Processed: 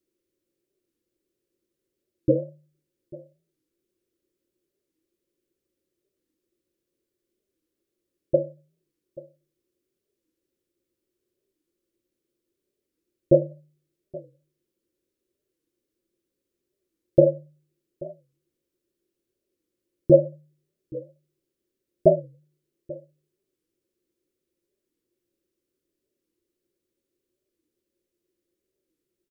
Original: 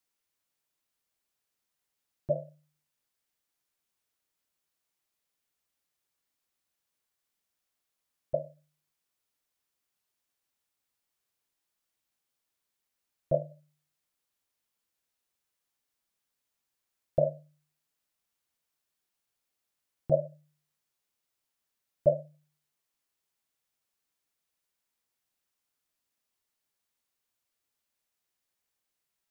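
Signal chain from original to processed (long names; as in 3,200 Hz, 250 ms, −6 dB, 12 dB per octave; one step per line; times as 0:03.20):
low shelf with overshoot 550 Hz +11.5 dB, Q 3
hollow resonant body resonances 350/540 Hz, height 13 dB, ringing for 70 ms
on a send: single-tap delay 834 ms −20.5 dB
on the sum: wow of a warped record 45 rpm, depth 160 cents
level −3.5 dB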